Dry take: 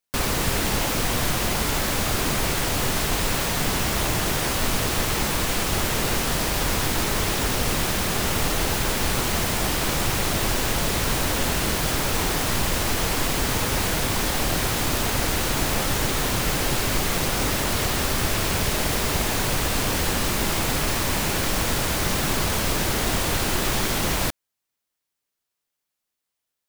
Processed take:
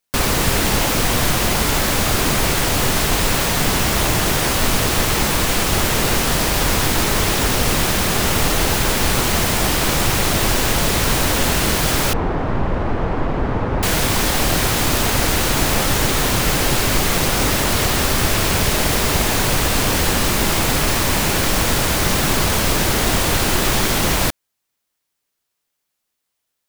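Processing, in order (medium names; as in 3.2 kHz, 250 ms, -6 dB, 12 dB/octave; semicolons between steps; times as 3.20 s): 12.13–13.83 s: low-pass 1.1 kHz 12 dB/octave; trim +6 dB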